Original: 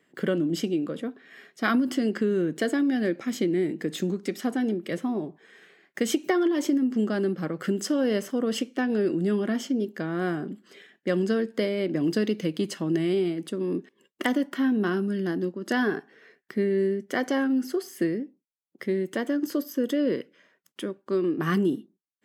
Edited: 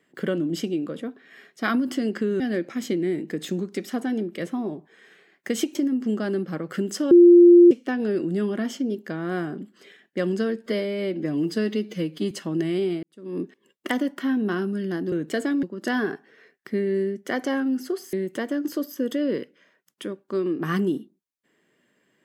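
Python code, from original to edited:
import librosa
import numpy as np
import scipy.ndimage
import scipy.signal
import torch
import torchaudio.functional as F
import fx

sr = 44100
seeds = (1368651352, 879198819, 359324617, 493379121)

y = fx.edit(x, sr, fx.move(start_s=2.4, length_s=0.51, to_s=15.47),
    fx.cut(start_s=6.26, length_s=0.39),
    fx.bleep(start_s=8.01, length_s=0.6, hz=348.0, db=-7.5),
    fx.stretch_span(start_s=11.56, length_s=1.1, factor=1.5),
    fx.fade_in_span(start_s=13.38, length_s=0.36, curve='qua'),
    fx.cut(start_s=17.97, length_s=0.94), tone=tone)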